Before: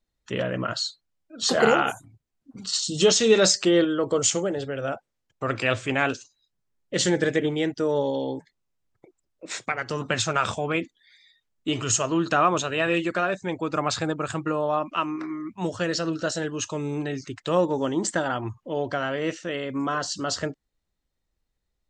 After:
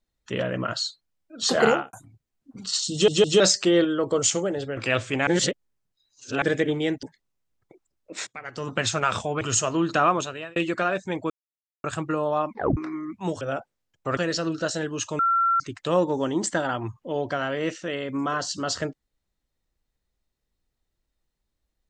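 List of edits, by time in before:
0:01.67–0:01.93: fade out and dull
0:02.92: stutter in place 0.16 s, 3 plays
0:04.77–0:05.53: move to 0:15.78
0:06.03–0:07.18: reverse
0:07.79–0:08.36: remove
0:09.60–0:10.11: fade in, from −22.5 dB
0:10.74–0:11.78: remove
0:12.45–0:12.93: fade out
0:13.67–0:14.21: silence
0:14.87: tape stop 0.27 s
0:16.80–0:17.21: beep over 1,360 Hz −18 dBFS

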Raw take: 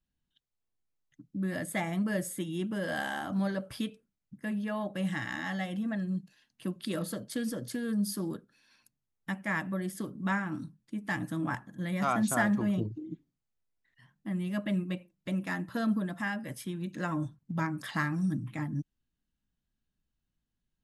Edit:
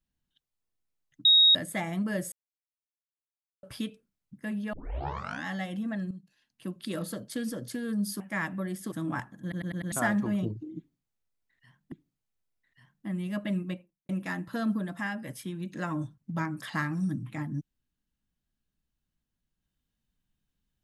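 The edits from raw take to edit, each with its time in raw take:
0:01.25–0:01.55: beep over 3,770 Hz −15.5 dBFS
0:02.32–0:03.63: silence
0:04.73: tape start 0.72 s
0:06.11–0:07.20: fade in equal-power, from −12.5 dB
0:08.20–0:09.34: remove
0:10.06–0:11.27: remove
0:11.77: stutter in place 0.10 s, 5 plays
0:13.13–0:14.27: repeat, 2 plays
0:14.88–0:15.30: fade out and dull

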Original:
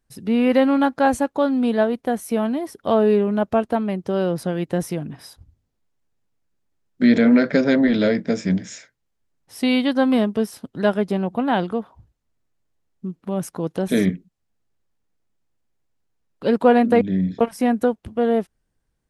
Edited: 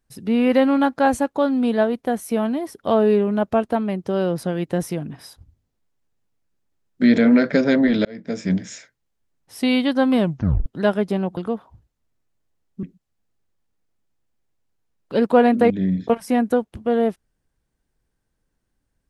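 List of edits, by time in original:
0:08.05–0:08.53: fade in
0:10.20: tape stop 0.46 s
0:11.37–0:11.62: remove
0:13.08–0:14.14: remove

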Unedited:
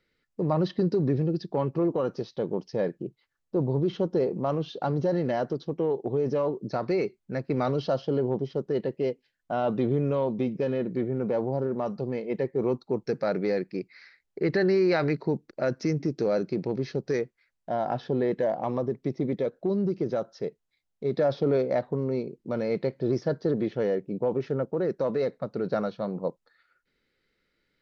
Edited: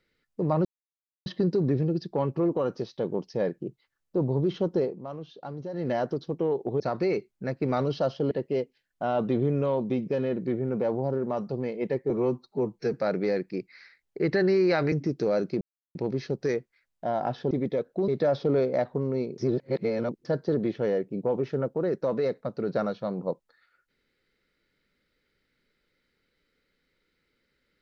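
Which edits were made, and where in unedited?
0:00.65: splice in silence 0.61 s
0:04.18–0:05.29: duck −10.5 dB, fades 0.17 s
0:06.19–0:06.68: remove
0:08.19–0:08.80: remove
0:12.59–0:13.15: time-stretch 1.5×
0:15.13–0:15.91: remove
0:16.60: splice in silence 0.34 s
0:18.16–0:19.18: remove
0:19.75–0:21.05: remove
0:22.35–0:23.22: reverse

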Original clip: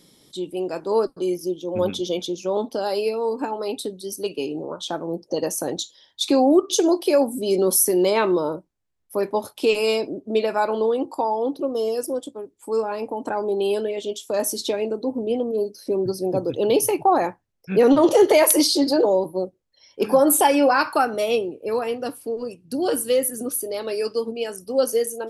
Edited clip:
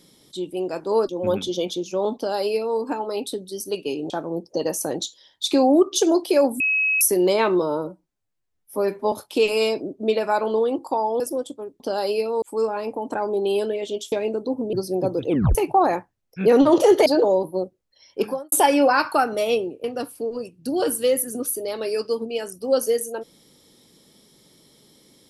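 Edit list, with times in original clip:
0:01.09–0:01.61: remove
0:02.68–0:03.30: duplicate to 0:12.57
0:04.62–0:04.87: remove
0:07.37–0:07.78: beep over 2,560 Hz −17.5 dBFS
0:08.39–0:09.39: time-stretch 1.5×
0:11.47–0:11.97: remove
0:14.27–0:14.69: remove
0:15.30–0:16.04: remove
0:16.58: tape stop 0.28 s
0:18.37–0:18.87: remove
0:20.01–0:20.33: fade out quadratic
0:21.65–0:21.90: remove

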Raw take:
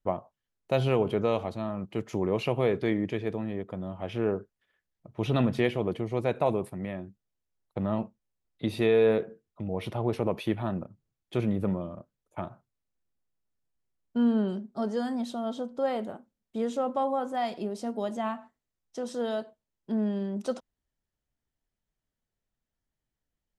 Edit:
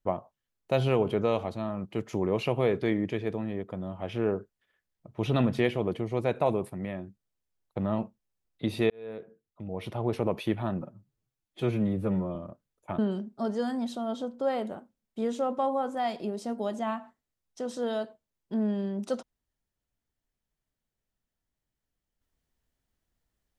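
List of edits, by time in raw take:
0:08.90–0:10.18: fade in linear
0:10.81–0:11.84: time-stretch 1.5×
0:12.47–0:14.36: remove

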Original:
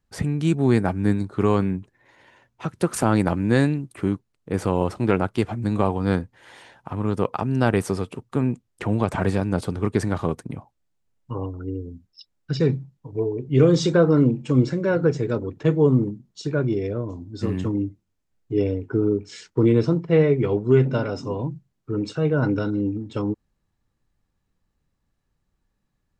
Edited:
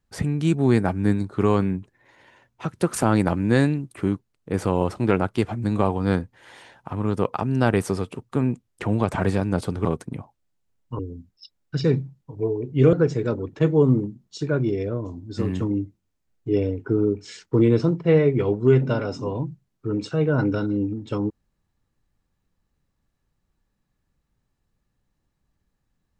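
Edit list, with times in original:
0:09.85–0:10.23: remove
0:11.37–0:11.75: remove
0:13.69–0:14.97: remove

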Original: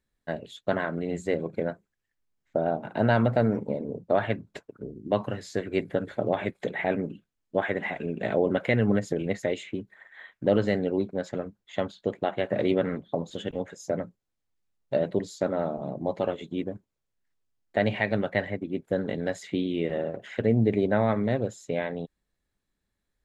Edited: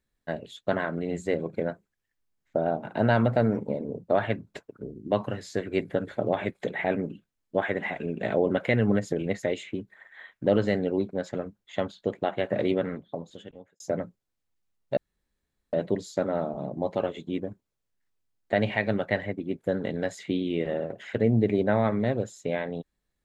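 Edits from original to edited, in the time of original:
0:12.54–0:13.80: fade out
0:14.97: splice in room tone 0.76 s

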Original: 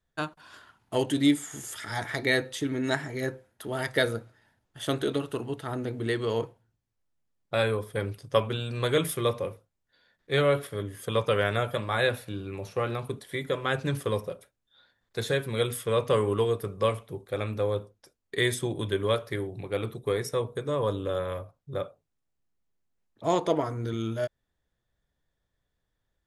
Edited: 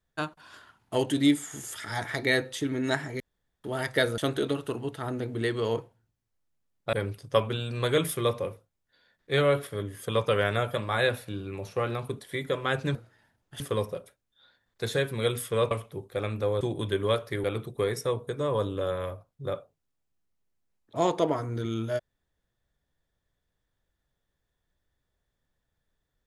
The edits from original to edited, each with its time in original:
0:03.20–0:03.64: fill with room tone
0:04.18–0:04.83: move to 0:13.95
0:07.58–0:07.93: remove
0:16.06–0:16.88: remove
0:17.78–0:18.61: remove
0:19.44–0:19.72: remove

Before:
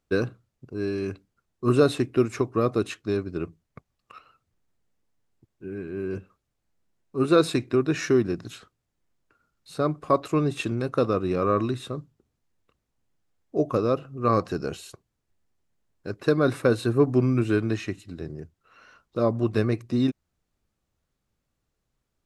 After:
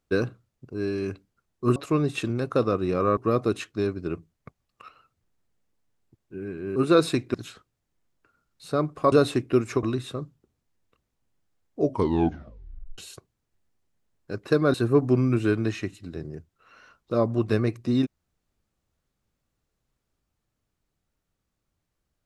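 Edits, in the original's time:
0:01.76–0:02.47: swap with 0:10.18–0:11.59
0:06.06–0:07.17: remove
0:07.75–0:08.40: remove
0:13.58: tape stop 1.16 s
0:16.50–0:16.79: remove

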